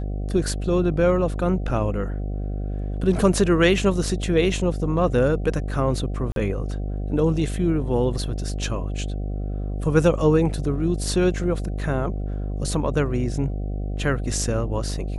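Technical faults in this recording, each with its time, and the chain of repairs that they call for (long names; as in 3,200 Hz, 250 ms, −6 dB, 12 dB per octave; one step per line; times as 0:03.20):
mains buzz 50 Hz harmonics 15 −27 dBFS
0:06.32–0:06.36: drop-out 42 ms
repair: hum removal 50 Hz, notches 15
repair the gap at 0:06.32, 42 ms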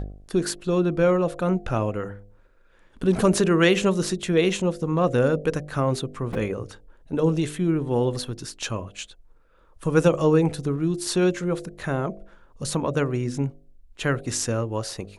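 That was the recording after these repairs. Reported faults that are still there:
none of them is left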